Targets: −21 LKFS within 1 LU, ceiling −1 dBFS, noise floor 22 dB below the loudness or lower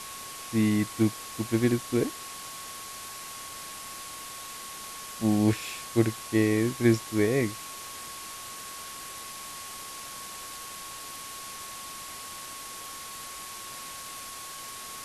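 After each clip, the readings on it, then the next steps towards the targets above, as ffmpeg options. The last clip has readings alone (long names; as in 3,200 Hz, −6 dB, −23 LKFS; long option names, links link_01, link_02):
interfering tone 1,100 Hz; level of the tone −44 dBFS; background noise floor −41 dBFS; target noise floor −54 dBFS; integrated loudness −31.5 LKFS; sample peak −10.0 dBFS; target loudness −21.0 LKFS
→ -af "bandreject=frequency=1100:width=30"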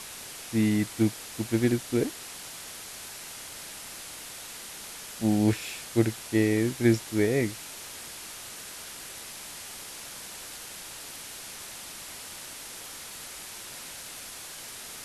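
interfering tone none found; background noise floor −42 dBFS; target noise floor −54 dBFS
→ -af "afftdn=noise_reduction=12:noise_floor=-42"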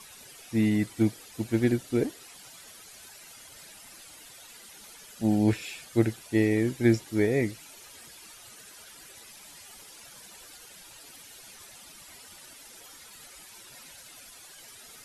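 background noise floor −50 dBFS; integrated loudness −27.0 LKFS; sample peak −10.5 dBFS; target loudness −21.0 LKFS
→ -af "volume=6dB"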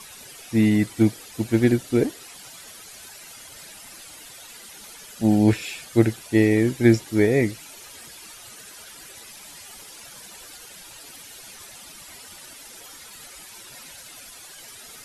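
integrated loudness −21.0 LKFS; sample peak −4.5 dBFS; background noise floor −44 dBFS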